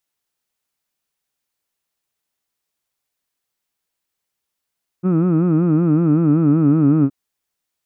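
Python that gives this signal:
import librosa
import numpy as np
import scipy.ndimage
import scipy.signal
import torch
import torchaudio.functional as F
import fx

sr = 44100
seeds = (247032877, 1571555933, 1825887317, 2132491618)

y = fx.formant_vowel(sr, seeds[0], length_s=2.07, hz=174.0, glide_st=-3.0, vibrato_hz=5.3, vibrato_st=1.35, f1_hz=280.0, f2_hz=1300.0, f3_hz=2500.0)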